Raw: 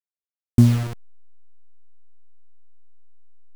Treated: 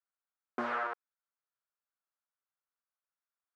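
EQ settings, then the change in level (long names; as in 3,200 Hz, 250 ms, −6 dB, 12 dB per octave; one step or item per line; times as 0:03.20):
high-pass filter 500 Hz 24 dB per octave
low-pass with resonance 1,400 Hz, resonance Q 2.9
0.0 dB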